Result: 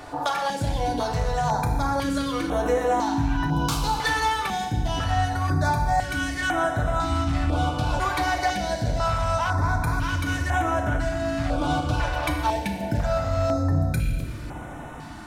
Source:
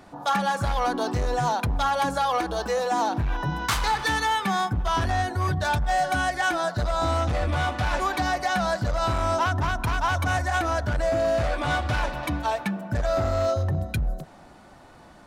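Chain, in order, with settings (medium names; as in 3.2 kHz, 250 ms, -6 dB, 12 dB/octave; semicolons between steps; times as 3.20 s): compression, threshold -33 dBFS, peak gain reduction 12 dB; FDN reverb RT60 1.5 s, low-frequency decay 1.55×, high-frequency decay 0.95×, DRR 2 dB; step-sequenced notch 2 Hz 210–4600 Hz; trim +9 dB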